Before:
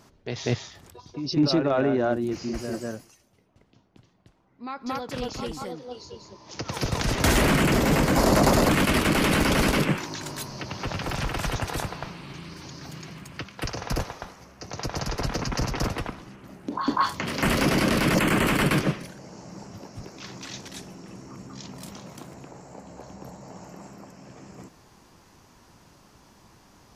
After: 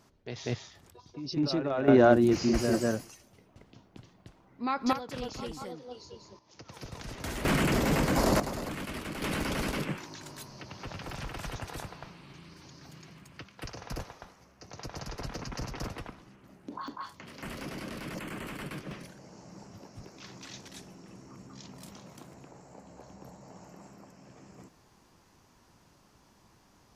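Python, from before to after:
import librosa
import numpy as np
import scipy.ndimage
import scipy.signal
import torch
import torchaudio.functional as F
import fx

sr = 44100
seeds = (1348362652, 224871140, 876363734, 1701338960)

y = fx.gain(x, sr, db=fx.steps((0.0, -7.5), (1.88, 4.5), (4.93, -6.0), (6.39, -16.5), (7.45, -5.5), (8.4, -16.5), (9.22, -10.5), (16.88, -18.0), (18.91, -7.5)))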